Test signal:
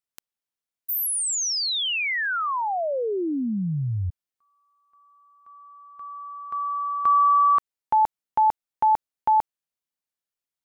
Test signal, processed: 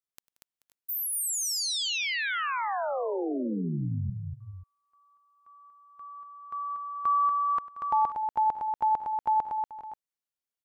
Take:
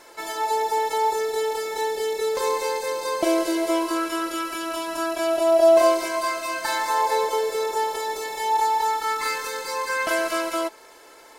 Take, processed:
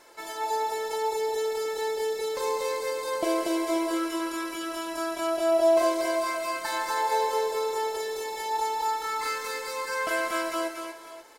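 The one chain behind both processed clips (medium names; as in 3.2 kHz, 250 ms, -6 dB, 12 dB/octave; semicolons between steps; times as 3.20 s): multi-tap echo 98/180/237/433/514/534 ms -19.5/-18.5/-5/-18/-17/-14.5 dB; trim -6 dB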